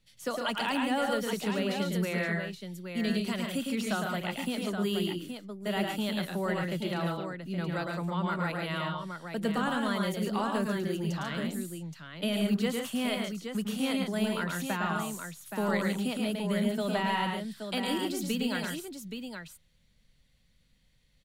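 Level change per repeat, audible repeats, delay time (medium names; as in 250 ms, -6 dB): no regular repeats, 3, 108 ms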